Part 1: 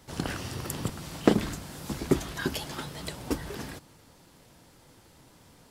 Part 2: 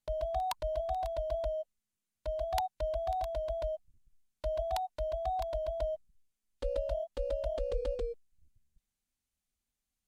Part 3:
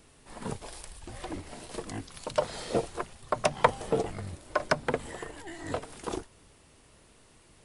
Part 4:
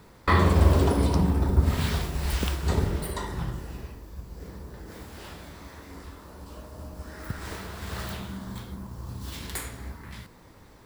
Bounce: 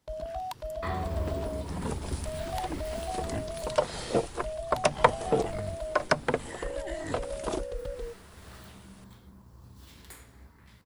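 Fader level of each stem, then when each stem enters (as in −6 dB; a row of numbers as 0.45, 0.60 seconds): −18.5, −2.5, +1.5, −14.0 decibels; 0.00, 0.00, 1.40, 0.55 seconds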